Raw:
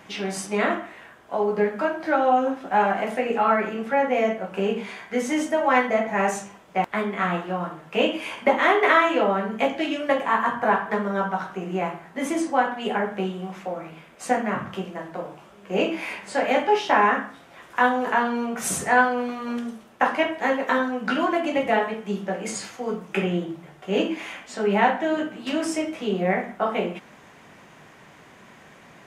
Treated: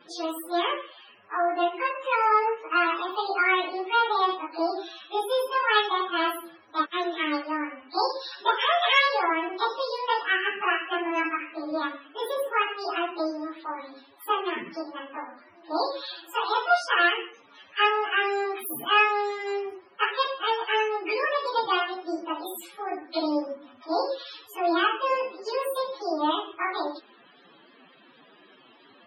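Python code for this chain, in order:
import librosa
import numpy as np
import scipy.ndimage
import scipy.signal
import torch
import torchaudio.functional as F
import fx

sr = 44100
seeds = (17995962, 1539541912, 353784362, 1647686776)

y = fx.pitch_bins(x, sr, semitones=9.0)
y = fx.spec_topn(y, sr, count=64)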